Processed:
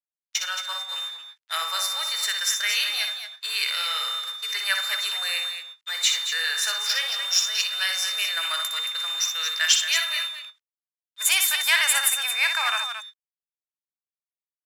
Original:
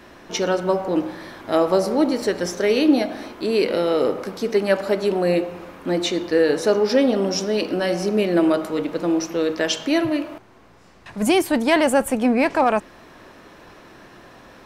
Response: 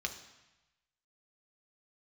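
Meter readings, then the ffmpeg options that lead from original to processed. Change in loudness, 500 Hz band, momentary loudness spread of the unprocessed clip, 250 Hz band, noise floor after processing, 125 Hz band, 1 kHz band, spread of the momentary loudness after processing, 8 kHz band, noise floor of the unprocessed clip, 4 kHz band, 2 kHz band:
-2.5 dB, -28.0 dB, 8 LU, under -40 dB, under -85 dBFS, under -40 dB, -7.5 dB, 11 LU, +9.0 dB, -47 dBFS, +9.5 dB, +4.0 dB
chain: -filter_complex "[0:a]highshelf=f=12000:g=-8,aeval=exprs='val(0)+0.0251*sin(2*PI*3600*n/s)':c=same,equalizer=f=7400:w=2.6:g=15,dynaudnorm=f=140:g=13:m=1.78,agate=range=0.02:threshold=0.0708:ratio=16:detection=peak,aexciter=amount=14.7:drive=5:freq=11000,acrusher=bits=8:mix=0:aa=0.000001,asplit=2[s0][s1];[s1]aecho=0:1:61.22|224.5:0.447|0.355[s2];[s0][s2]amix=inputs=2:normalize=0,adynamicsmooth=sensitivity=7:basefreq=5200,highpass=f=1400:w=0.5412,highpass=f=1400:w=1.3066"

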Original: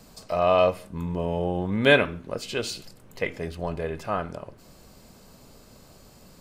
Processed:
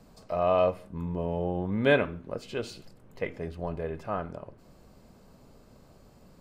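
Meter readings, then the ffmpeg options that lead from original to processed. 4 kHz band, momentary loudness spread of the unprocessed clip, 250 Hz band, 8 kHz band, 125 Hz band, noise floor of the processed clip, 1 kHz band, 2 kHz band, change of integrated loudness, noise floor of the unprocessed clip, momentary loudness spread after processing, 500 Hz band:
-10.5 dB, 15 LU, -3.0 dB, -13.0 dB, -3.0 dB, -57 dBFS, -4.5 dB, -7.0 dB, -4.5 dB, -53 dBFS, 16 LU, -3.5 dB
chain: -af "highshelf=f=2300:g=-11,volume=0.708"

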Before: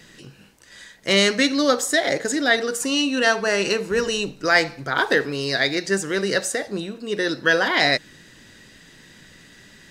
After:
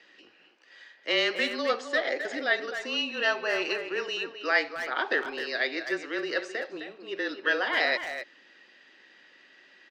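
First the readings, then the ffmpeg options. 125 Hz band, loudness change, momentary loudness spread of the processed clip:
under -25 dB, -8.0 dB, 10 LU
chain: -filter_complex "[0:a]highpass=f=410:w=0.5412,highpass=f=410:w=1.3066,equalizer=f=470:t=q:w=4:g=-8,equalizer=f=690:t=q:w=4:g=-4,equalizer=f=1000:t=q:w=4:g=-6,equalizer=f=1500:t=q:w=4:g=-6,equalizer=f=2200:t=q:w=4:g=-3,equalizer=f=3700:t=q:w=4:g=-8,lowpass=f=4000:w=0.5412,lowpass=f=4000:w=1.3066,asplit=2[s0][s1];[s1]adelay=260,highpass=300,lowpass=3400,asoftclip=type=hard:threshold=0.119,volume=0.398[s2];[s0][s2]amix=inputs=2:normalize=0,afreqshift=-23,volume=0.75"

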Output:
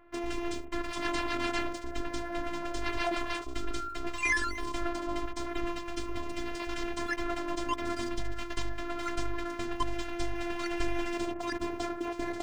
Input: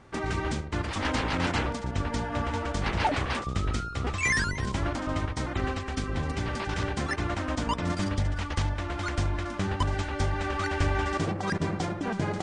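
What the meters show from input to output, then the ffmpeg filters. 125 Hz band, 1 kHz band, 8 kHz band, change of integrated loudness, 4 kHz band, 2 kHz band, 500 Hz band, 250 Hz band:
-17.5 dB, -4.5 dB, -4.5 dB, -5.0 dB, -4.0 dB, -4.0 dB, -2.5 dB, -3.5 dB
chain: -filter_complex "[0:a]afftfilt=real='hypot(re,im)*cos(PI*b)':imag='0':win_size=512:overlap=0.75,acrossover=split=2900[s0][s1];[s1]aeval=exprs='val(0)*gte(abs(val(0)),0.0015)':c=same[s2];[s0][s2]amix=inputs=2:normalize=0"

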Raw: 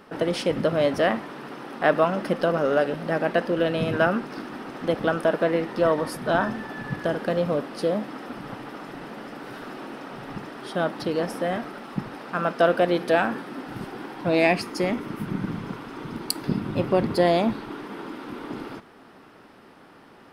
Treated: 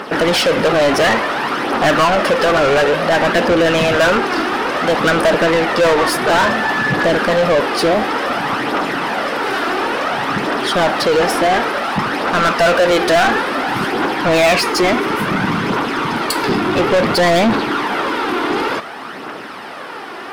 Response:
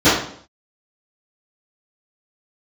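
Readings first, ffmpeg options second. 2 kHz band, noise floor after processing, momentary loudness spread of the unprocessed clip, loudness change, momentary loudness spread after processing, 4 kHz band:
+14.5 dB, -29 dBFS, 16 LU, +10.0 dB, 6 LU, +16.0 dB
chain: -filter_complex "[0:a]aphaser=in_gain=1:out_gain=1:delay=3:decay=0.41:speed=0.57:type=triangular,asplit=2[s0][s1];[s1]highpass=f=720:p=1,volume=31.6,asoftclip=type=tanh:threshold=0.531[s2];[s0][s2]amix=inputs=2:normalize=0,lowpass=f=5400:p=1,volume=0.501"

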